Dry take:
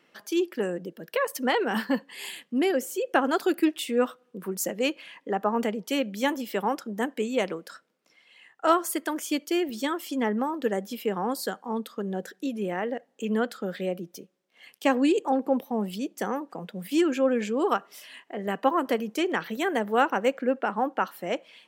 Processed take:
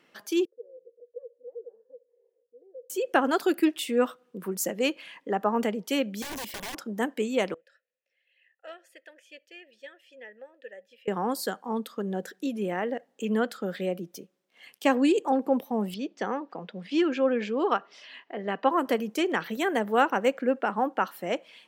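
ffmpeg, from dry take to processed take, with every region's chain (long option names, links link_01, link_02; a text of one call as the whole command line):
ffmpeg -i in.wav -filter_complex "[0:a]asettb=1/sr,asplit=3[link_01][link_02][link_03];[link_01]atrim=end=0.454[link_04];[link_02]atrim=start=0.45:end=2.9,asetpts=PTS-STARTPTS,afade=type=in:duration=0.004:curve=qsin,afade=type=out:start_time=2.446:duration=0.004:curve=qsin,acompressor=threshold=-38dB:ratio=2:attack=3.2:release=140:knee=1:detection=peak,asuperpass=centerf=480:order=4:qfactor=7.8[link_05];[link_03]atrim=start=2.896[link_06];[link_04][link_05]acrossfade=duration=0.004:curve1=hsin:curve2=qsin[link_07];[link_07][link_06]acrossfade=duration=0.004:curve1=qsin:curve2=hsin,asettb=1/sr,asplit=3[link_08][link_09][link_10];[link_08]atrim=end=6.224[link_11];[link_09]atrim=start=6.22:end=6.78,asetpts=PTS-STARTPTS,afade=type=in:duration=0.004:curve=qsin,afade=type=out:start_time=0.556:duration=0.004:curve=qsin,acompressor=threshold=-28dB:ratio=12:attack=3.2:release=140:knee=1:detection=peak,aeval=exprs='(mod(35.5*val(0)+1,2)-1)/35.5':channel_layout=same,asuperstop=centerf=1300:order=4:qfactor=6.5[link_12];[link_10]atrim=start=6.776[link_13];[link_11][link_12]acrossfade=duration=0.004:curve1=hsin:curve2=qsin[link_14];[link_14][link_13]acrossfade=duration=0.004:curve1=qsin:curve2=hsin,asettb=1/sr,asplit=3[link_15][link_16][link_17];[link_15]atrim=end=7.544[link_18];[link_16]atrim=start=7.54:end=11.08,asetpts=PTS-STARTPTS,afade=type=in:duration=0.004:curve=qsin,afade=type=out:start_time=3.536:duration=0.004:curve=qsin,asplit=3[link_19][link_20][link_21];[link_19]bandpass=frequency=530:width_type=q:width=8,volume=0dB[link_22];[link_20]bandpass=frequency=1840:width_type=q:width=8,volume=-6dB[link_23];[link_21]bandpass=frequency=2480:width_type=q:width=8,volume=-9dB[link_24];[link_22][link_23][link_24]amix=inputs=3:normalize=0,equalizer=frequency=310:width_type=o:width=2.4:gain=-14[link_25];[link_17]atrim=start=11.076[link_26];[link_18][link_25]acrossfade=duration=0.004:curve1=hsin:curve2=qsin[link_27];[link_27][link_26]acrossfade=duration=0.004:curve1=qsin:curve2=hsin,asettb=1/sr,asplit=3[link_28][link_29][link_30];[link_28]atrim=end=15.944[link_31];[link_29]atrim=start=15.94:end=18.71,asetpts=PTS-STARTPTS,afade=type=in:duration=0.004:curve=qsin,afade=type=out:start_time=2.766:duration=0.004:curve=qsin,lowpass=frequency=5100:width=0.5412,lowpass=frequency=5100:width=1.3066,lowshelf=frequency=140:gain=-9.5[link_32];[link_30]atrim=start=18.706[link_33];[link_31][link_32]acrossfade=duration=0.004:curve1=hsin:curve2=qsin[link_34];[link_34][link_33]acrossfade=duration=0.004:curve1=qsin:curve2=hsin" out.wav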